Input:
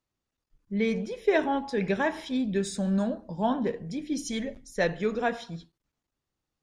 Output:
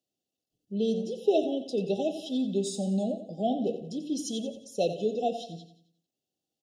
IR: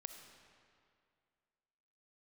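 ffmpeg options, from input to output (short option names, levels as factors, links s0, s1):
-filter_complex "[0:a]highpass=200,asplit=2[s0][s1];[s1]aecho=0:1:89|178|267|356|445:0.251|0.113|0.0509|0.0229|0.0103[s2];[s0][s2]amix=inputs=2:normalize=0,afftfilt=real='re*(1-between(b*sr/4096,810,2600))':imag='im*(1-between(b*sr/4096,810,2600))':win_size=4096:overlap=0.75"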